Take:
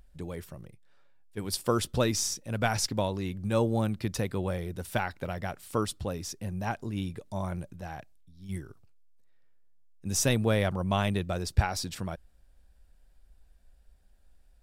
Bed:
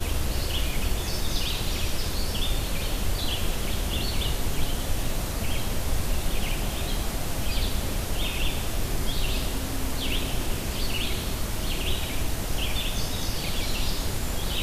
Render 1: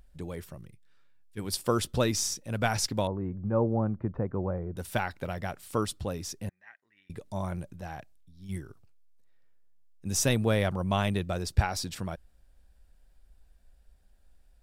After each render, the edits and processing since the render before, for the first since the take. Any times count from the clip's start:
0:00.58–0:01.39: parametric band 660 Hz −12.5 dB 1.1 octaves
0:03.07–0:04.77: low-pass filter 1,300 Hz 24 dB per octave
0:06.49–0:07.10: resonant band-pass 1,900 Hz, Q 14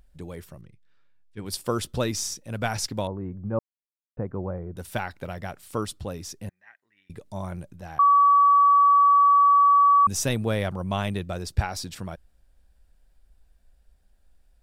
0:00.61–0:01.46: high-frequency loss of the air 80 metres
0:03.59–0:04.17: silence
0:07.99–0:10.07: beep over 1,140 Hz −13.5 dBFS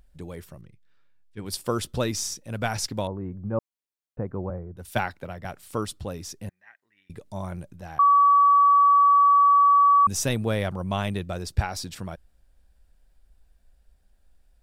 0:04.50–0:05.45: multiband upward and downward expander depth 100%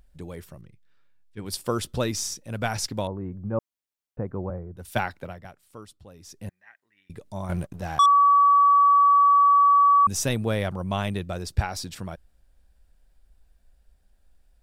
0:05.27–0:06.47: duck −14.5 dB, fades 0.39 s quadratic
0:07.49–0:08.06: leveller curve on the samples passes 2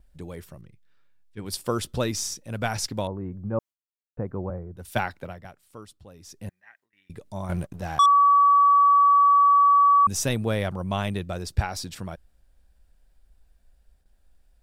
noise gate with hold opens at −54 dBFS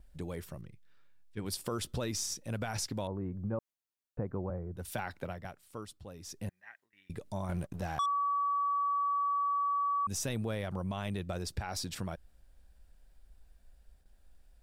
brickwall limiter −20.5 dBFS, peak gain reduction 10.5 dB
downward compressor 2 to 1, threshold −36 dBFS, peak gain reduction 7.5 dB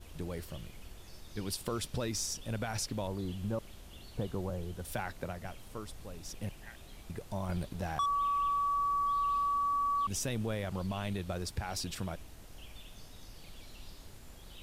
mix in bed −23.5 dB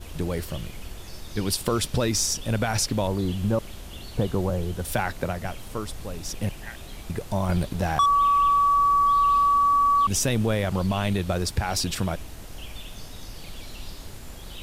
level +11.5 dB

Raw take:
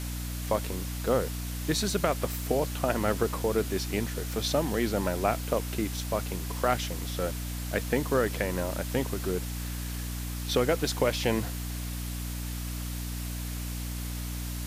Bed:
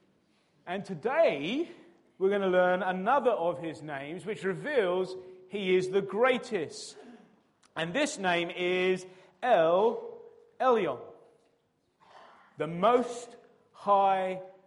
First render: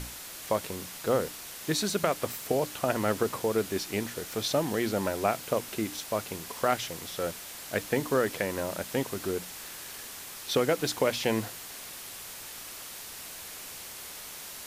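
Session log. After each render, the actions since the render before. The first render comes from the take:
mains-hum notches 60/120/180/240/300 Hz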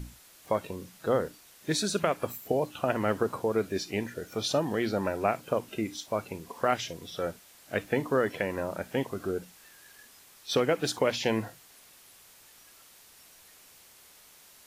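noise reduction from a noise print 13 dB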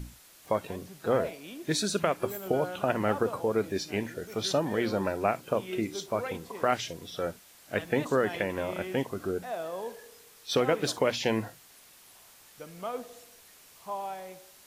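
mix in bed −12 dB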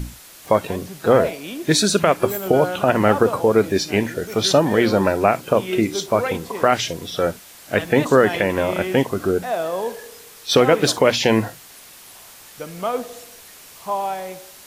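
level +12 dB
brickwall limiter −3 dBFS, peak gain reduction 3 dB

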